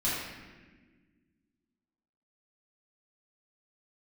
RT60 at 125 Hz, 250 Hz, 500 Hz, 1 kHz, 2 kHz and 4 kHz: 2.2, 2.4, 1.7, 1.2, 1.4, 1.0 seconds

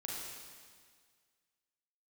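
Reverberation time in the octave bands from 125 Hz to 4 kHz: 1.8, 1.8, 1.8, 1.8, 1.8, 1.8 seconds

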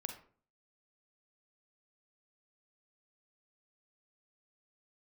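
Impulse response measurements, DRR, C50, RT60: 4.5 dB, 7.5 dB, 0.45 s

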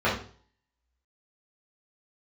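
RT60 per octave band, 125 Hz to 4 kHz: 0.55, 0.45, 0.45, 0.45, 0.40, 0.45 seconds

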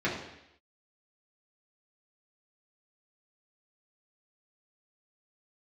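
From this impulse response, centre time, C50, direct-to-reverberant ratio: 45 ms, 5.0 dB, −7.5 dB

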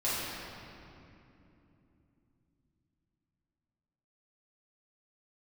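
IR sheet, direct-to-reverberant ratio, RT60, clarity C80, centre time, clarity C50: −10.5 dB, 2.9 s, −1.5 dB, 171 ms, −3.5 dB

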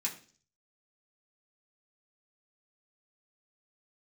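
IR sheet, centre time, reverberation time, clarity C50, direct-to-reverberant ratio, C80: 15 ms, 0.45 s, 12.0 dB, −4.0 dB, 15.5 dB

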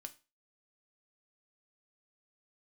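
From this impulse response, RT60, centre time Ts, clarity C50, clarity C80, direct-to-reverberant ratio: 0.30 s, 4 ms, 18.0 dB, 23.5 dB, 7.5 dB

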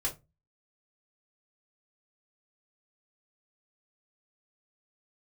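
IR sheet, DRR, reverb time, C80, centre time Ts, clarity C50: −3.5 dB, 0.25 s, 23.5 dB, 15 ms, 13.5 dB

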